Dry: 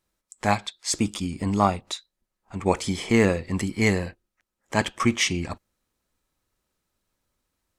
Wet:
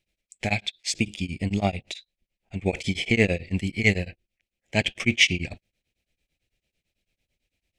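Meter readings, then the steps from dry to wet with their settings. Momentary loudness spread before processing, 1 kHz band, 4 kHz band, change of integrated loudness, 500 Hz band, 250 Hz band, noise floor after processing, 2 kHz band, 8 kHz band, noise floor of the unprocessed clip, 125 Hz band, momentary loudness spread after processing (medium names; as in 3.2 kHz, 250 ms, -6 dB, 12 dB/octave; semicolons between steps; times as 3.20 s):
14 LU, -9.5 dB, +3.5 dB, 0.0 dB, -3.0 dB, -3.0 dB, under -85 dBFS, +3.5 dB, -3.5 dB, -83 dBFS, 0.0 dB, 16 LU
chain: FFT filter 140 Hz 0 dB, 280 Hz -5 dB, 700 Hz -3 dB, 1.1 kHz -24 dB, 2.4 kHz +8 dB, 4.2 kHz -1 dB, 12 kHz -10 dB; tremolo of two beating tones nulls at 9 Hz; trim +3.5 dB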